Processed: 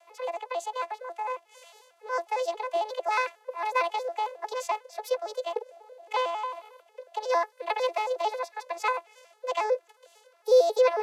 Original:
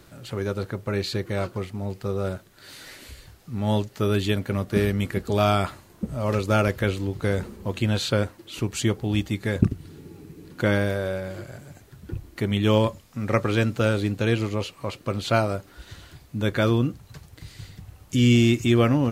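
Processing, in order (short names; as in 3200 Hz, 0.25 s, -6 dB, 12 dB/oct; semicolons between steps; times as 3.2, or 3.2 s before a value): arpeggiated vocoder major triad, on G3, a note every 0.157 s; steep high-pass 290 Hz 48 dB/oct; speed mistake 45 rpm record played at 78 rpm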